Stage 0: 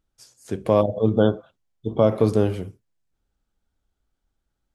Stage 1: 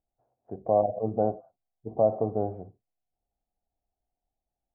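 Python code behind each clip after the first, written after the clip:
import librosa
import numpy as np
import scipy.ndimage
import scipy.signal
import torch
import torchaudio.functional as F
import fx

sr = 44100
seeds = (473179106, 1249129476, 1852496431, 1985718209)

y = fx.ladder_lowpass(x, sr, hz=770.0, resonance_pct=80)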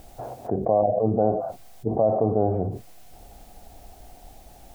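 y = fx.env_flatten(x, sr, amount_pct=70)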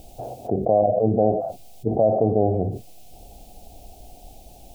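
y = fx.band_shelf(x, sr, hz=1400.0, db=-15.0, octaves=1.3)
y = F.gain(torch.from_numpy(y), 2.5).numpy()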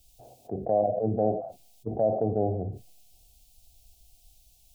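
y = fx.band_widen(x, sr, depth_pct=70)
y = F.gain(torch.from_numpy(y), -8.0).numpy()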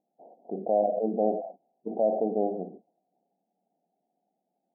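y = fx.brickwall_bandpass(x, sr, low_hz=170.0, high_hz=1000.0)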